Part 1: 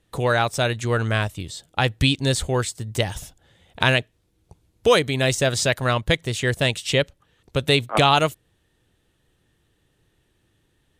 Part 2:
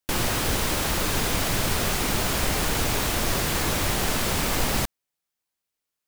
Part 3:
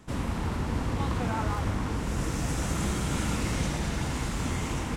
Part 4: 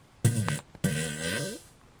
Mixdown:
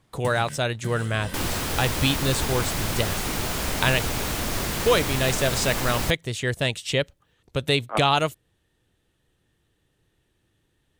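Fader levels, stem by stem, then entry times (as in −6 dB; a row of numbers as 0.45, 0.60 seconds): −3.5, −3.0, −8.5, −8.5 decibels; 0.00, 1.25, 1.05, 0.00 seconds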